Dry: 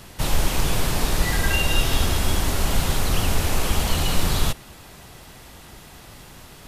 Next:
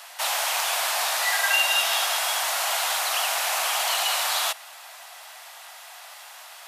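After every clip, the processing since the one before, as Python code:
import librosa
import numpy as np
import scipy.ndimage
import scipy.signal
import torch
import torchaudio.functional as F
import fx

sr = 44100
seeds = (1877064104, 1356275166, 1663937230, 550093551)

y = scipy.signal.sosfilt(scipy.signal.ellip(4, 1.0, 70, 670.0, 'highpass', fs=sr, output='sos'), x)
y = y * librosa.db_to_amplitude(4.0)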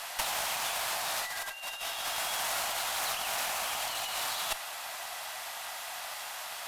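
y = fx.low_shelf(x, sr, hz=240.0, db=10.5)
y = fx.over_compress(y, sr, threshold_db=-29.0, ratio=-0.5)
y = fx.tube_stage(y, sr, drive_db=22.0, bias=0.6)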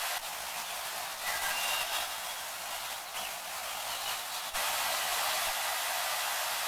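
y = x + 10.0 ** (-8.5 / 20.0) * np.pad(x, (int(951 * sr / 1000.0), 0))[:len(x)]
y = fx.chorus_voices(y, sr, voices=4, hz=1.2, base_ms=14, depth_ms=3.0, mix_pct=40)
y = fx.over_compress(y, sr, threshold_db=-40.0, ratio=-0.5)
y = y * librosa.db_to_amplitude(6.0)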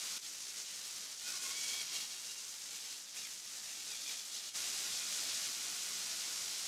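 y = fx.bandpass_q(x, sr, hz=6100.0, q=2.0)
y = y * np.sin(2.0 * np.pi * 520.0 * np.arange(len(y)) / sr)
y = y * librosa.db_to_amplitude(3.5)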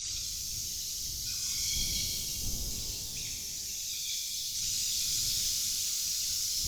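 y = fx.envelope_sharpen(x, sr, power=3.0)
y = fx.dmg_wind(y, sr, seeds[0], corner_hz=83.0, level_db=-53.0)
y = fx.rev_shimmer(y, sr, seeds[1], rt60_s=2.2, semitones=12, shimmer_db=-8, drr_db=-3.0)
y = y * librosa.db_to_amplitude(3.5)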